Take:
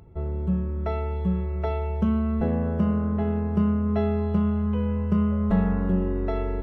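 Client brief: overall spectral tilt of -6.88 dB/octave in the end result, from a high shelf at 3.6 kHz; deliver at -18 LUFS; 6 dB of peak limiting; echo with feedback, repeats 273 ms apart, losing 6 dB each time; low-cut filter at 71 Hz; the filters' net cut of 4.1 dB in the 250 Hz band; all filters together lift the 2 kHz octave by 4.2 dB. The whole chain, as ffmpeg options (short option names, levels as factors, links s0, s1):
-af "highpass=71,equalizer=f=250:t=o:g=-5.5,equalizer=f=2000:t=o:g=4.5,highshelf=f=3600:g=3.5,alimiter=limit=0.1:level=0:latency=1,aecho=1:1:273|546|819|1092|1365|1638:0.501|0.251|0.125|0.0626|0.0313|0.0157,volume=3.35"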